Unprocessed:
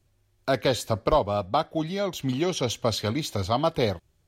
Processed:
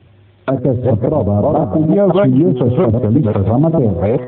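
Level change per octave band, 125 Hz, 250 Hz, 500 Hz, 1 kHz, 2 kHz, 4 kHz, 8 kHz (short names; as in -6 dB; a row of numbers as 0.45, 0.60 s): +17.0 dB, +17.0 dB, +12.0 dB, +5.5 dB, 0.0 dB, n/a, under -40 dB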